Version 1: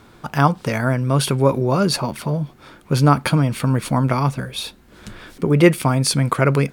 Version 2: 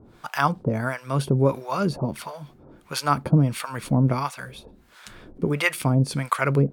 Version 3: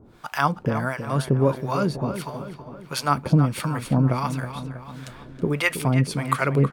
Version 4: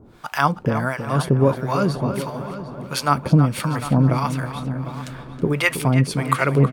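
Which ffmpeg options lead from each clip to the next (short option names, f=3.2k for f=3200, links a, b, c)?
-filter_complex "[0:a]acrossover=split=710[a][b];[a]aeval=exprs='val(0)*(1-1/2+1/2*cos(2*PI*1.5*n/s))':c=same[c];[b]aeval=exprs='val(0)*(1-1/2-1/2*cos(2*PI*1.5*n/s))':c=same[d];[c][d]amix=inputs=2:normalize=0"
-filter_complex "[0:a]asplit=2[a][b];[b]adelay=322,lowpass=f=3.3k:p=1,volume=-10dB,asplit=2[c][d];[d]adelay=322,lowpass=f=3.3k:p=1,volume=0.55,asplit=2[e][f];[f]adelay=322,lowpass=f=3.3k:p=1,volume=0.55,asplit=2[g][h];[h]adelay=322,lowpass=f=3.3k:p=1,volume=0.55,asplit=2[i][j];[j]adelay=322,lowpass=f=3.3k:p=1,volume=0.55,asplit=2[k][l];[l]adelay=322,lowpass=f=3.3k:p=1,volume=0.55[m];[a][c][e][g][i][k][m]amix=inputs=7:normalize=0"
-filter_complex "[0:a]asplit=2[a][b];[b]adelay=752,lowpass=f=3.1k:p=1,volume=-13dB,asplit=2[c][d];[d]adelay=752,lowpass=f=3.1k:p=1,volume=0.3,asplit=2[e][f];[f]adelay=752,lowpass=f=3.1k:p=1,volume=0.3[g];[a][c][e][g]amix=inputs=4:normalize=0,volume=3dB"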